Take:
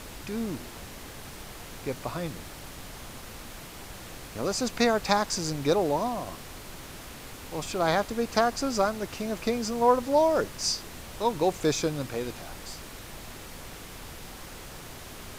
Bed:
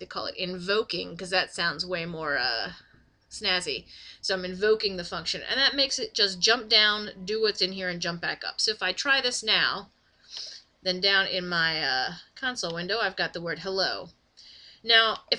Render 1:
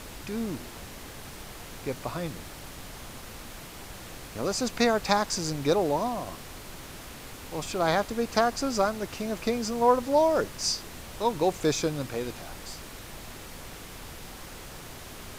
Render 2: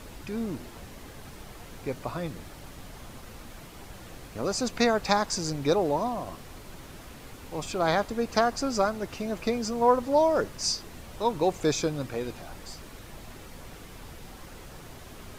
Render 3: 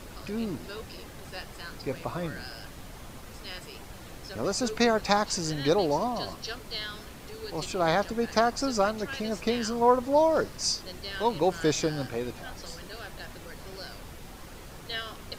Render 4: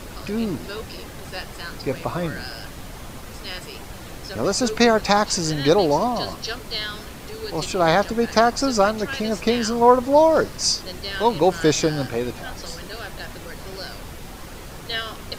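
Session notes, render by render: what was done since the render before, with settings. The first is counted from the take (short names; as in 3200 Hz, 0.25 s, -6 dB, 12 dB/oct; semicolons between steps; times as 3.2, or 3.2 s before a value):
nothing audible
denoiser 6 dB, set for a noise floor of -44 dBFS
add bed -16 dB
gain +7.5 dB; limiter -1 dBFS, peak gain reduction 2.5 dB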